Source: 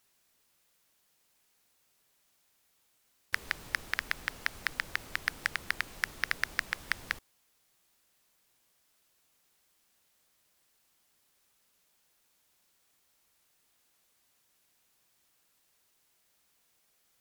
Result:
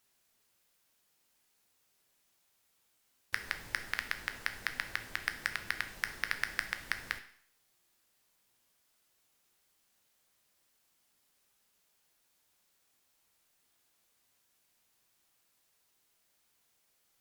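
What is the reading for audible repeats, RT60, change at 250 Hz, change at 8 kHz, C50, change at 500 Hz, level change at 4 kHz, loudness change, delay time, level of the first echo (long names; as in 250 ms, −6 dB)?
no echo audible, 0.60 s, −2.5 dB, −2.5 dB, 12.0 dB, −2.5 dB, −2.0 dB, −2.5 dB, no echo audible, no echo audible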